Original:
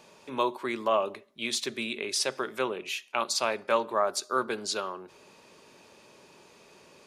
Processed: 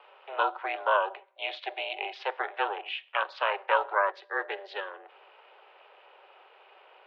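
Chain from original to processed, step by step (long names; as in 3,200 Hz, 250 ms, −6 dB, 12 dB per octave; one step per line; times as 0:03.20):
ring modulation 200 Hz
single-sideband voice off tune +180 Hz 240–3,000 Hz
gain on a spectral selection 0:04.12–0:05.06, 610–1,600 Hz −8 dB
level +4 dB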